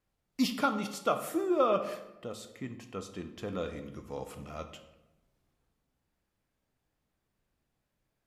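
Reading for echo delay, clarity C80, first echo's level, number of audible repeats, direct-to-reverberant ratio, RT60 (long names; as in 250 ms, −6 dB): no echo audible, 12.5 dB, no echo audible, no echo audible, 7.0 dB, 0.95 s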